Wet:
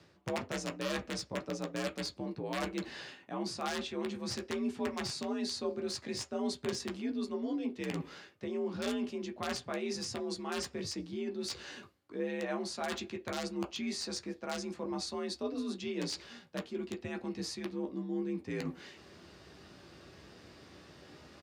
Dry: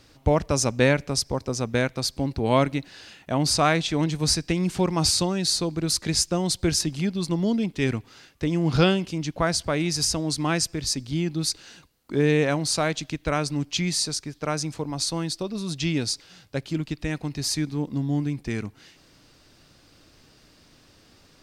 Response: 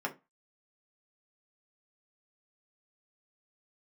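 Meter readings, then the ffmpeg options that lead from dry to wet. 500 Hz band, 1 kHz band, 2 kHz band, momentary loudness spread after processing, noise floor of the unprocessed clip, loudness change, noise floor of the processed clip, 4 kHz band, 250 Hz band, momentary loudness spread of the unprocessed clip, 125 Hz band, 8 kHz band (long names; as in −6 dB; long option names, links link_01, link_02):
−10.5 dB, −12.5 dB, −12.0 dB, 18 LU, −57 dBFS, −13.0 dB, −60 dBFS, −13.5 dB, −11.5 dB, 9 LU, −20.5 dB, −17.0 dB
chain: -filter_complex "[0:a]aresample=32000,aresample=44100,aemphasis=mode=reproduction:type=cd,areverse,acompressor=threshold=-37dB:ratio=5,areverse,aeval=exprs='(mod(26.6*val(0)+1,2)-1)/26.6':channel_layout=same,acrossover=split=9100[link_01][link_02];[link_02]acompressor=threshold=-58dB:ratio=4:attack=1:release=60[link_03];[link_01][link_03]amix=inputs=2:normalize=0,asplit=2[link_04][link_05];[1:a]atrim=start_sample=2205,asetrate=57330,aresample=44100,adelay=12[link_06];[link_05][link_06]afir=irnorm=-1:irlink=0,volume=-4.5dB[link_07];[link_04][link_07]amix=inputs=2:normalize=0,afreqshift=55"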